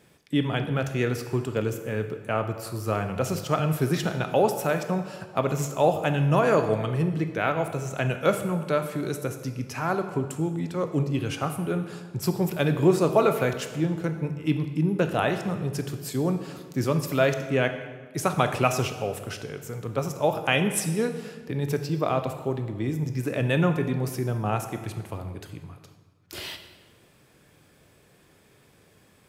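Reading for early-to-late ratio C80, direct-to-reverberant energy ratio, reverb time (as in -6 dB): 11.0 dB, 7.0 dB, 1.5 s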